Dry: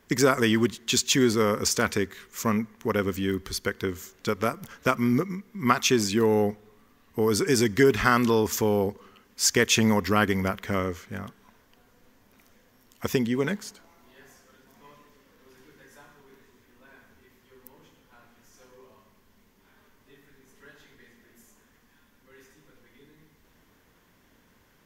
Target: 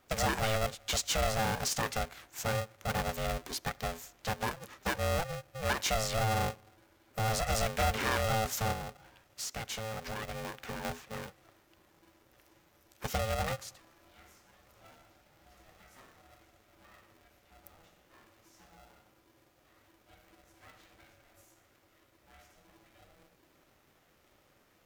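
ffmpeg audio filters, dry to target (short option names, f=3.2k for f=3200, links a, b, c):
-filter_complex "[0:a]asoftclip=type=tanh:threshold=-19dB,asettb=1/sr,asplit=3[a][b][c];[a]atrim=end=8.724[d];[b]atrim=start=8.72:end=10.85,asetpts=PTS-STARTPTS,afade=t=in:d=0.004:c=qsin,afade=t=out:st=2.126:d=0.004:c=qsin,acompressor=threshold=-32dB:ratio=6[e];[c]atrim=start=10.846[f];[d][e]acrossfade=d=0.004:c1=hsin:c2=qsin[g];[g][f]acrossfade=d=0.004:c1=qsin:c2=hsin,aeval=exprs='val(0)*sgn(sin(2*PI*330*n/s))':c=same,volume=-5.5dB"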